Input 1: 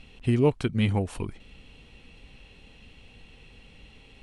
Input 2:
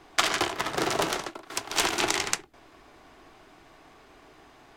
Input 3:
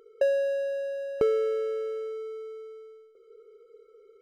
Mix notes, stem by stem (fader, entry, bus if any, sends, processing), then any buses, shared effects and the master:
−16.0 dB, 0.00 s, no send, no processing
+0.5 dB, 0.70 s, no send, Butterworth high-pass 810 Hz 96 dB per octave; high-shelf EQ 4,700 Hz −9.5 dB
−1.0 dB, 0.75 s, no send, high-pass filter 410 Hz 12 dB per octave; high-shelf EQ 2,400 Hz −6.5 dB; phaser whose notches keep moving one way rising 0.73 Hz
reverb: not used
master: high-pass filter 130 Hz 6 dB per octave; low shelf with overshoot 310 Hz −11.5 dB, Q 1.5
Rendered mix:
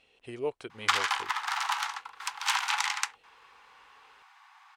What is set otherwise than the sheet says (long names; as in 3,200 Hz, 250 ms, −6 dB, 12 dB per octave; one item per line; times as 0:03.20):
stem 1 −16.0 dB → −10.0 dB
stem 3: muted